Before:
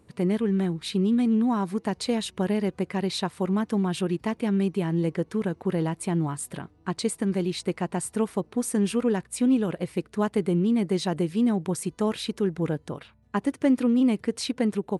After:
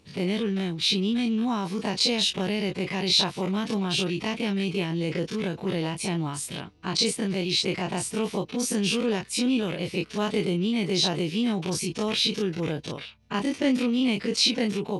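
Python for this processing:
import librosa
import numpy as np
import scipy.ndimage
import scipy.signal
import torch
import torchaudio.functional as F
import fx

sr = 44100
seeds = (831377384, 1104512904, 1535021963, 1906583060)

y = fx.spec_dilate(x, sr, span_ms=60)
y = fx.band_shelf(y, sr, hz=3800.0, db=11.5, octaves=1.7)
y = F.gain(torch.from_numpy(y), -4.5).numpy()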